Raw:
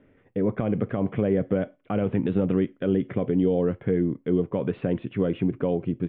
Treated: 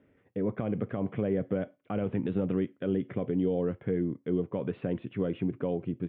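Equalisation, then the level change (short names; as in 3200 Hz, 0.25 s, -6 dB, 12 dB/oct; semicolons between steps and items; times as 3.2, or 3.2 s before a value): HPF 47 Hz; -6.0 dB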